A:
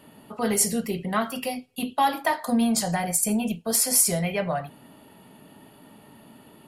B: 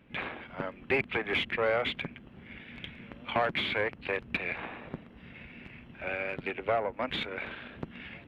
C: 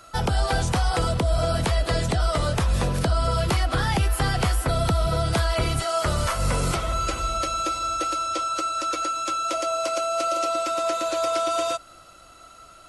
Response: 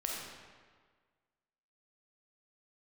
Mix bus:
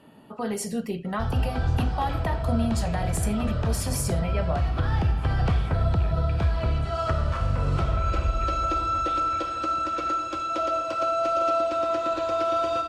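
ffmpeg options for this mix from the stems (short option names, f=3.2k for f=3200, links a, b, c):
-filter_complex "[0:a]volume=-1dB,asplit=2[a][b];[1:a]acompressor=threshold=-37dB:ratio=6,adelay=1950,volume=-6dB[c];[2:a]adynamicsmooth=sensitivity=1:basefreq=3.6k,equalizer=f=73:w=0.79:g=12,acompressor=threshold=-18dB:ratio=6,adelay=1050,volume=-5dB,asplit=2[d][e];[e]volume=-4dB[f];[b]apad=whole_len=614641[g];[d][g]sidechaincompress=threshold=-30dB:ratio=8:attack=16:release=390[h];[a][h]amix=inputs=2:normalize=0,aemphasis=mode=reproduction:type=50kf,alimiter=limit=-19.5dB:level=0:latency=1:release=262,volume=0dB[i];[3:a]atrim=start_sample=2205[j];[f][j]afir=irnorm=-1:irlink=0[k];[c][i][k]amix=inputs=3:normalize=0,bandreject=f=2.1k:w=11"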